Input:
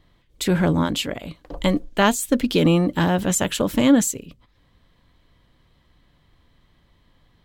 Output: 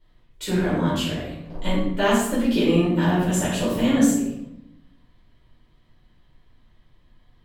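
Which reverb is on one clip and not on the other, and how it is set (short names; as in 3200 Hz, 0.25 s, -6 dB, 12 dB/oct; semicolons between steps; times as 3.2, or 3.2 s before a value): shoebox room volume 250 m³, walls mixed, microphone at 4.7 m; gain -15 dB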